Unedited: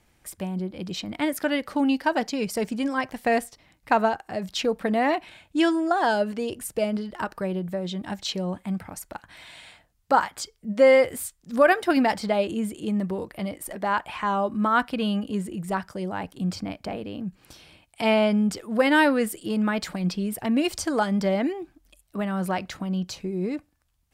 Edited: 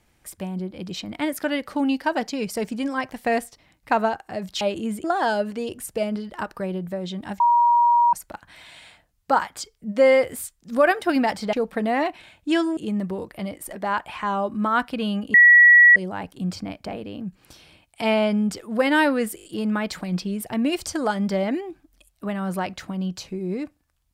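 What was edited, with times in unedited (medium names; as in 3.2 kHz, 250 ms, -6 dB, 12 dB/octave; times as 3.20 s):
4.61–5.85 s: swap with 12.34–12.77 s
8.21–8.94 s: bleep 952 Hz -13.5 dBFS
15.34–15.96 s: bleep 1.93 kHz -8 dBFS
19.36 s: stutter 0.02 s, 5 plays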